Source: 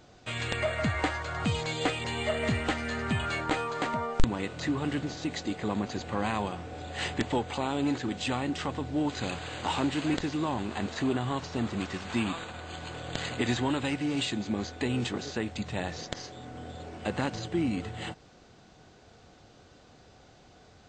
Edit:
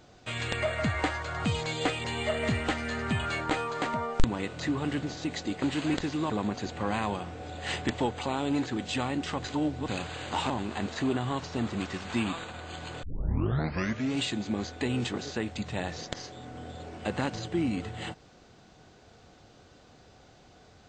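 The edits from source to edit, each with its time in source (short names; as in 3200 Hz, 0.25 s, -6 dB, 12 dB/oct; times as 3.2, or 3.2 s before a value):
8.76–9.2 reverse
9.82–10.5 move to 5.62
13.03 tape start 1.14 s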